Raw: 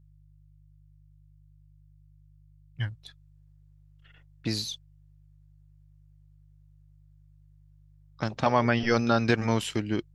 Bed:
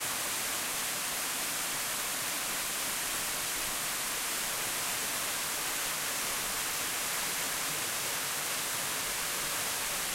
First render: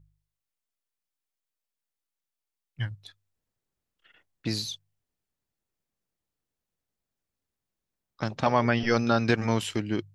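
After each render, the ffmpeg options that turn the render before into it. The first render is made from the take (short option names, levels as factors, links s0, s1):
-af "bandreject=f=50:t=h:w=4,bandreject=f=100:t=h:w=4,bandreject=f=150:t=h:w=4"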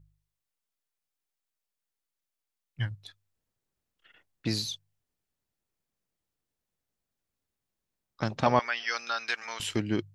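-filter_complex "[0:a]asettb=1/sr,asplit=3[s0][s1][s2];[s0]atrim=end=8.594[s3];[s1]atrim=start=8.59:end=9.6,asetpts=PTS-STARTPTS,afade=t=in:d=0.004:c=qsin,afade=t=out:st=1.006:d=0.004:c=qsin,highpass=1400[s4];[s2]atrim=start=9.596[s5];[s3][s4]acrossfade=d=0.004:c1=hsin:c2=qsin[s6];[s6][s5]acrossfade=d=0.004:c1=qsin:c2=hsin"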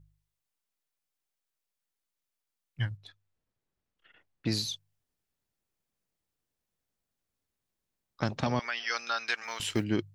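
-filter_complex "[0:a]asettb=1/sr,asplit=3[s0][s1][s2];[s0]atrim=end=2.974[s3];[s1]atrim=start=2.97:end=4.52,asetpts=PTS-STARTPTS,afade=t=in:d=0.004:c=qsin,afade=t=out:st=1.546:d=0.004:c=qsin,lowpass=f=3100:p=1[s4];[s2]atrim=start=4.516[s5];[s3][s4]acrossfade=d=0.004:c1=hsin:c2=qsin[s6];[s6][s5]acrossfade=d=0.004:c1=qsin:c2=hsin,asettb=1/sr,asplit=3[s7][s8][s9];[s7]atrim=end=8.294[s10];[s8]atrim=start=8.29:end=8.9,asetpts=PTS-STARTPTS,afade=t=in:d=0.004:c=qsin,afade=t=out:st=0.606:d=0.004:c=qsin,acrossover=split=330|3000[s11][s12][s13];[s12]acompressor=threshold=0.0355:ratio=6:attack=3.2:release=140:knee=2.83:detection=peak[s14];[s11][s14][s13]amix=inputs=3:normalize=0[s15];[s9]atrim=start=8.896[s16];[s10][s15]acrossfade=d=0.004:c1=hsin:c2=qsin[s17];[s17][s16]acrossfade=d=0.004:c1=qsin:c2=hsin,asplit=3[s18][s19][s20];[s18]afade=t=out:st=9.43:d=0.02[s21];[s19]acrusher=bits=8:mode=log:mix=0:aa=0.000001,afade=t=in:st=9.43:d=0.02,afade=t=out:st=9.83:d=0.02[s22];[s20]afade=t=in:st=9.83:d=0.02[s23];[s21][s22][s23]amix=inputs=3:normalize=0"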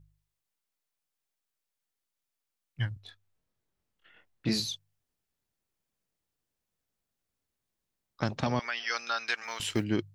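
-filter_complex "[0:a]asettb=1/sr,asplit=3[s0][s1][s2];[s0]atrim=end=2.944[s3];[s1]atrim=start=2.94:end=4.6,asetpts=PTS-STARTPTS,afade=t=in:d=0.004:c=qsin,afade=t=out:st=1.656:d=0.004:c=qsin,asplit=2[s4][s5];[s5]adelay=23,volume=0.75[s6];[s4][s6]amix=inputs=2:normalize=0,atrim=end_sample=73206[s7];[s2]atrim=start=4.596[s8];[s3][s7]acrossfade=d=0.004:c1=hsin:c2=qsin[s9];[s9][s8]acrossfade=d=0.004:c1=qsin:c2=hsin"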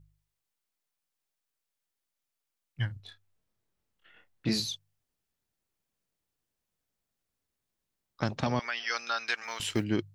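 -filter_complex "[0:a]asettb=1/sr,asplit=3[s0][s1][s2];[s0]atrim=end=2.864[s3];[s1]atrim=start=2.86:end=4.47,asetpts=PTS-STARTPTS,afade=t=in:d=0.004:c=qsin,afade=t=out:st=1.606:d=0.004:c=qsin,asplit=2[s4][s5];[s5]adelay=32,volume=0.299[s6];[s4][s6]amix=inputs=2:normalize=0,atrim=end_sample=71001[s7];[s2]atrim=start=4.466[s8];[s3][s7]acrossfade=d=0.004:c1=hsin:c2=qsin[s9];[s9][s8]acrossfade=d=0.004:c1=qsin:c2=hsin"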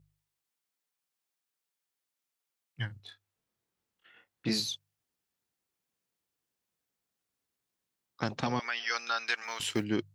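-af "highpass=f=170:p=1,bandreject=f=610:w=12"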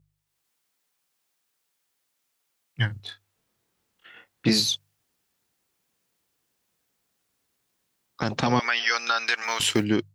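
-af "alimiter=limit=0.0891:level=0:latency=1:release=112,dynaudnorm=f=120:g=5:m=3.55"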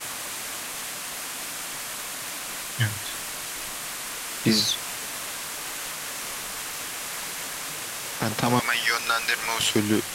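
-filter_complex "[1:a]volume=1[s0];[0:a][s0]amix=inputs=2:normalize=0"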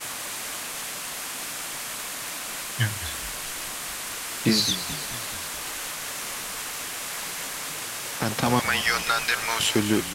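-filter_complex "[0:a]asplit=8[s0][s1][s2][s3][s4][s5][s6][s7];[s1]adelay=214,afreqshift=-33,volume=0.211[s8];[s2]adelay=428,afreqshift=-66,volume=0.133[s9];[s3]adelay=642,afreqshift=-99,volume=0.0841[s10];[s4]adelay=856,afreqshift=-132,volume=0.0531[s11];[s5]adelay=1070,afreqshift=-165,volume=0.0331[s12];[s6]adelay=1284,afreqshift=-198,volume=0.0209[s13];[s7]adelay=1498,afreqshift=-231,volume=0.0132[s14];[s0][s8][s9][s10][s11][s12][s13][s14]amix=inputs=8:normalize=0"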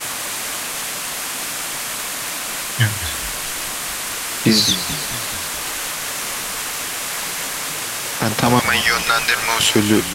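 -af "volume=2.51,alimiter=limit=0.708:level=0:latency=1"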